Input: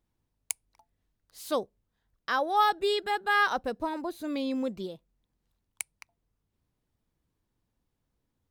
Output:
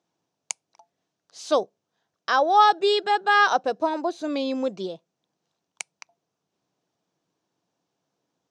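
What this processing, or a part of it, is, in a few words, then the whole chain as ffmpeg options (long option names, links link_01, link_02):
television speaker: -af "highpass=frequency=170:width=0.5412,highpass=frequency=170:width=1.3066,equalizer=frequency=230:width_type=q:width=4:gain=-9,equalizer=frequency=690:width_type=q:width=4:gain=6,equalizer=frequency=2000:width_type=q:width=4:gain=-5,equalizer=frequency=6000:width_type=q:width=4:gain=6,lowpass=frequency=7100:width=0.5412,lowpass=frequency=7100:width=1.3066,volume=6.5dB"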